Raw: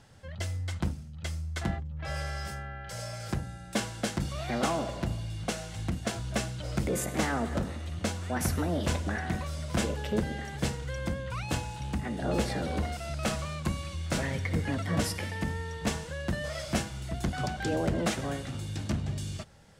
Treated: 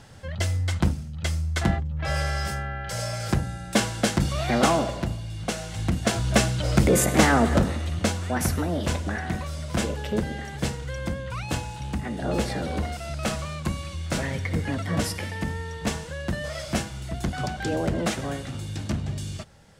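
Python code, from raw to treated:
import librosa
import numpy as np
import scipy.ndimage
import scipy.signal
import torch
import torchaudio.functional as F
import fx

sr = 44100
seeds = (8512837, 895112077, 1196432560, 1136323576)

y = fx.gain(x, sr, db=fx.line((4.74, 8.5), (5.21, 1.5), (6.34, 11.0), (7.51, 11.0), (8.68, 3.0)))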